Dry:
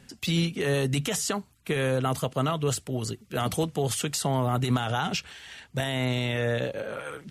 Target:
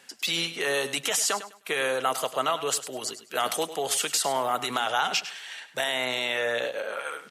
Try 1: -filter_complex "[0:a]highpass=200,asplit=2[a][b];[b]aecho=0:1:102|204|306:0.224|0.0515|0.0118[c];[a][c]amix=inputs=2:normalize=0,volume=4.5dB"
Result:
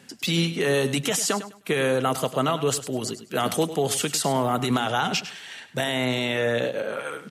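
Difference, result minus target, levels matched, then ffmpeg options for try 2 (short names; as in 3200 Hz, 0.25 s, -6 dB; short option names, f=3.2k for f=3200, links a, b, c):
250 Hz band +10.5 dB
-filter_complex "[0:a]highpass=610,asplit=2[a][b];[b]aecho=0:1:102|204|306:0.224|0.0515|0.0118[c];[a][c]amix=inputs=2:normalize=0,volume=4.5dB"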